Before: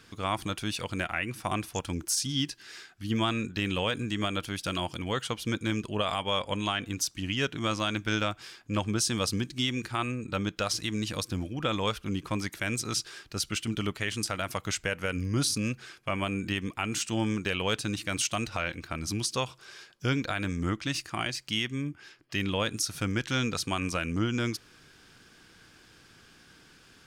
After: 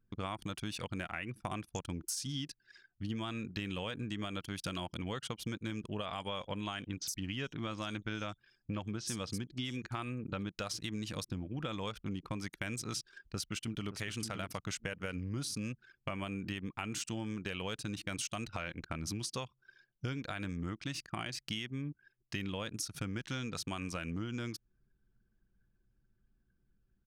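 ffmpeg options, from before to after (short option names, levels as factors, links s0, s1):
-filter_complex "[0:a]asettb=1/sr,asplit=3[s0][s1][s2];[s0]atrim=end=6.064[s3];[s1]atrim=start=6.06:end=10.51,asetpts=PTS-STARTPTS,afade=t=in:d=0.004:c=qsin,afade=t=out:st=4.446:d=0.004:c=qsin,acrossover=split=5100[s4][s5];[s5]adelay=70[s6];[s4][s6]amix=inputs=2:normalize=0,atrim=end_sample=196245[s7];[s2]atrim=start=10.506[s8];[s3][s7]acrossfade=d=0.004:c1=hsin:c2=qsin[s9];[s9][s8]acrossfade=d=0.004:c1=qsin:c2=hsin,asplit=2[s10][s11];[s11]afade=t=in:st=13.25:d=0.01,afade=t=out:st=13.88:d=0.01,aecho=0:1:570|1140|1710:0.375837|0.0939594|0.0234898[s12];[s10][s12]amix=inputs=2:normalize=0,anlmdn=0.398,equalizer=f=160:w=1.5:g=3.5,acompressor=threshold=0.0158:ratio=6"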